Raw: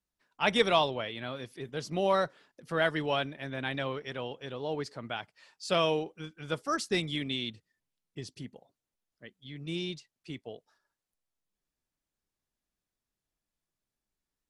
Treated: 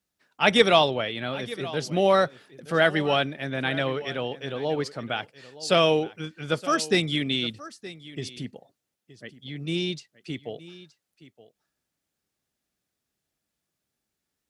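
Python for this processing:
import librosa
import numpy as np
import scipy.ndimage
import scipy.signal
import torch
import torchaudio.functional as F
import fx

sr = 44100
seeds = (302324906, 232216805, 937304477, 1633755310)

p1 = scipy.signal.sosfilt(scipy.signal.butter(2, 79.0, 'highpass', fs=sr, output='sos'), x)
p2 = fx.peak_eq(p1, sr, hz=1000.0, db=-6.5, octaves=0.23)
p3 = p2 + fx.echo_single(p2, sr, ms=921, db=-17.5, dry=0)
y = F.gain(torch.from_numpy(p3), 7.5).numpy()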